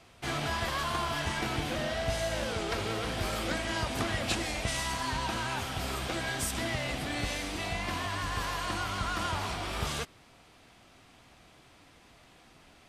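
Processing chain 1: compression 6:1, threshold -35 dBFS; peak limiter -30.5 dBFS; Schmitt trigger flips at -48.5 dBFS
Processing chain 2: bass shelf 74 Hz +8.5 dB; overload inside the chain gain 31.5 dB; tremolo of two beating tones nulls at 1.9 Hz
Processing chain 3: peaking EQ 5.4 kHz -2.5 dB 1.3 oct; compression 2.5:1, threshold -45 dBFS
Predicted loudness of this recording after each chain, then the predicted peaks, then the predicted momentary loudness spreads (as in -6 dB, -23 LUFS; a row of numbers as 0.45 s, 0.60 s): -41.0 LUFS, -37.5 LUFS, -43.0 LUFS; -35.5 dBFS, -31.5 dBFS, -27.5 dBFS; 11 LU, 3 LU, 16 LU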